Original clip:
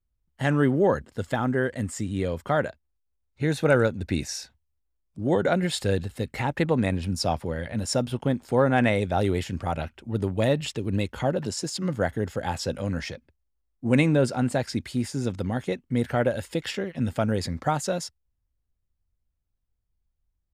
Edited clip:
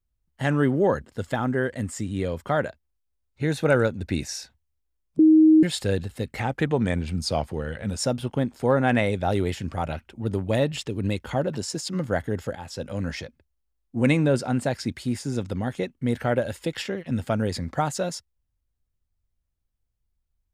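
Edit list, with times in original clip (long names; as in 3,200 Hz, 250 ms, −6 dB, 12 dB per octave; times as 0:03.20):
0:05.19–0:05.63: beep over 314 Hz −11 dBFS
0:06.40–0:07.88: play speed 93%
0:12.44–0:12.93: fade in linear, from −13 dB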